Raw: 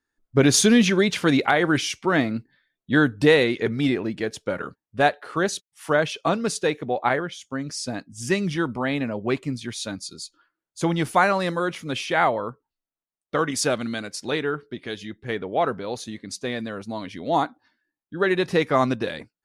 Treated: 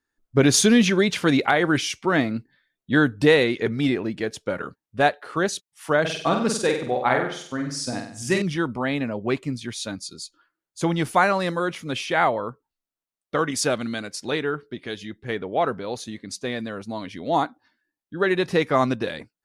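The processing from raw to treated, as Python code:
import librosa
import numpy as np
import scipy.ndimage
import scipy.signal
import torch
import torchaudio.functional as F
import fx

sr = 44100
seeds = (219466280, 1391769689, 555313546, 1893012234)

y = fx.room_flutter(x, sr, wall_m=8.2, rt60_s=0.55, at=(6.0, 8.42))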